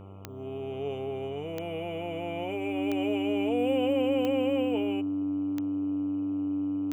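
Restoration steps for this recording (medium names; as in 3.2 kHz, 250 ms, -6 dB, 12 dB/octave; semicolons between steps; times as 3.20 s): de-click; de-hum 97.2 Hz, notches 14; band-stop 290 Hz, Q 30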